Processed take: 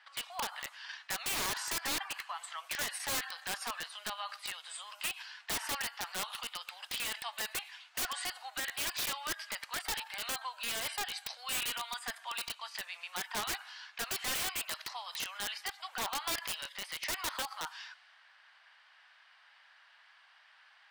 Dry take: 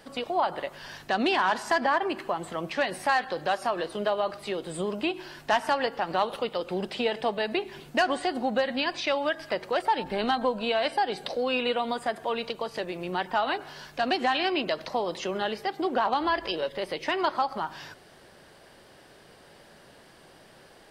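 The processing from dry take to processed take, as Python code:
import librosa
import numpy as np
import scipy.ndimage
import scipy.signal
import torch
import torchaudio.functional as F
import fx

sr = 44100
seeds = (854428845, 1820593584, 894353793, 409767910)

p1 = fx.level_steps(x, sr, step_db=21)
p2 = x + (p1 * 10.0 ** (-2.0 / 20.0))
p3 = fx.env_lowpass(p2, sr, base_hz=2400.0, full_db=-25.0)
p4 = scipy.signal.sosfilt(scipy.signal.bessel(8, 1600.0, 'highpass', norm='mag', fs=sr, output='sos'), p3)
p5 = (np.mod(10.0 ** (27.0 / 20.0) * p4 + 1.0, 2.0) - 1.0) / 10.0 ** (27.0 / 20.0)
y = p5 * 10.0 ** (-1.5 / 20.0)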